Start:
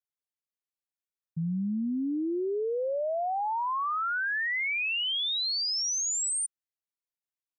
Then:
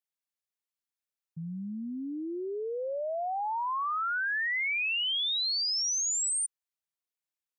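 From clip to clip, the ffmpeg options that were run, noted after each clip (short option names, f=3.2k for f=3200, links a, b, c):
-af "lowshelf=f=470:g=-8.5"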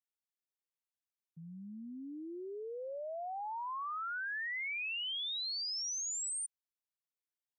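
-af "highpass=170,volume=-8.5dB"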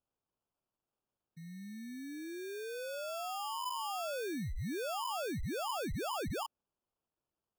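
-af "acrusher=samples=22:mix=1:aa=0.000001,volume=1dB"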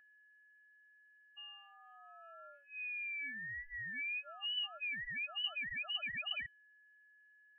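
-af "lowpass=f=2.6k:t=q:w=0.5098,lowpass=f=2.6k:t=q:w=0.6013,lowpass=f=2.6k:t=q:w=0.9,lowpass=f=2.6k:t=q:w=2.563,afreqshift=-3000,aeval=exprs='val(0)+0.00141*sin(2*PI*1700*n/s)':c=same,afftfilt=real='re*eq(mod(floor(b*sr/1024/280),2),0)':imag='im*eq(mod(floor(b*sr/1024/280),2),0)':win_size=1024:overlap=0.75"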